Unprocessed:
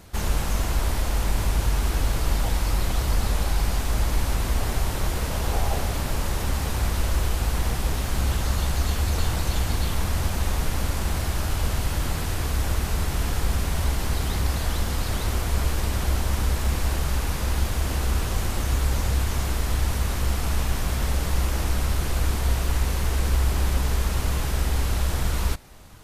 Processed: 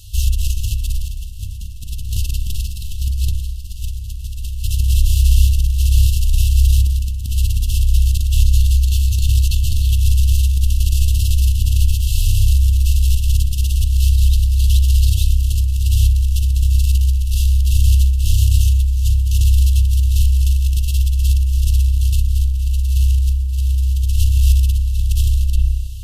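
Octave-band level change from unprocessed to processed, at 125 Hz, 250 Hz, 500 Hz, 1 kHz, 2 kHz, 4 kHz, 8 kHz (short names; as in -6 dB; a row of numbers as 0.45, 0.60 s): +10.5 dB, -8.5 dB, under -25 dB, under -35 dB, -7.0 dB, +3.5 dB, +3.5 dB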